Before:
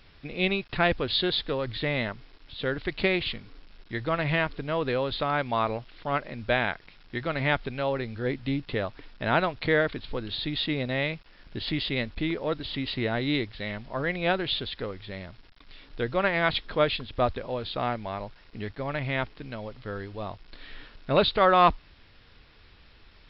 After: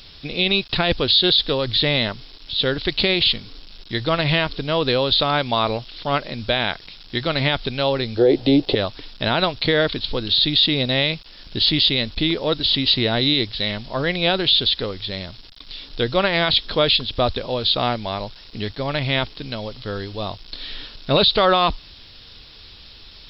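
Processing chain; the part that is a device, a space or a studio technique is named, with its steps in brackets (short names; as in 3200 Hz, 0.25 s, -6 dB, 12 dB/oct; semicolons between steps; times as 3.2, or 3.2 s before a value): 8.17–8.75 band shelf 500 Hz +15 dB; over-bright horn tweeter (resonant high shelf 2800 Hz +10 dB, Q 1.5; limiter -14.5 dBFS, peak gain reduction 10.5 dB); gain +7.5 dB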